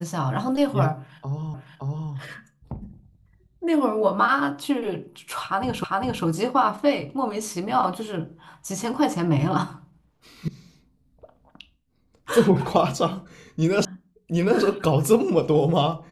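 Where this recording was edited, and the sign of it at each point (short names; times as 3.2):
1.54 repeat of the last 0.57 s
5.84 repeat of the last 0.4 s
10.48 sound cut off
13.85 sound cut off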